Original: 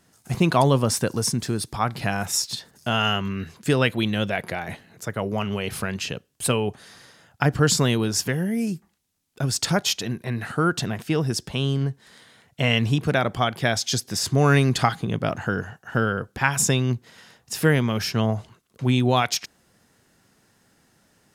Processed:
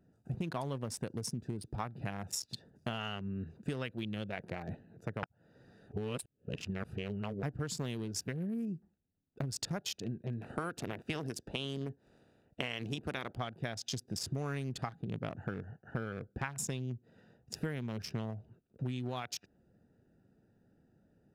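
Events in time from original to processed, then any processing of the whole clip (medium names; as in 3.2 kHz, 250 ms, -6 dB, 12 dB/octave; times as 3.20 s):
5.23–7.43 s: reverse
10.40–13.36 s: spectral peaks clipped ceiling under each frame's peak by 15 dB
whole clip: local Wiener filter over 41 samples; compression 12:1, threshold -31 dBFS; trim -3 dB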